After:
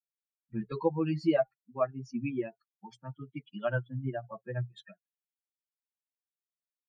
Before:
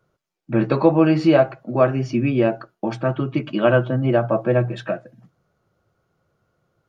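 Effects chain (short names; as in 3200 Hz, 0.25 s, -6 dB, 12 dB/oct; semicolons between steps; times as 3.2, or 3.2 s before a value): per-bin expansion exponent 3; gain -8.5 dB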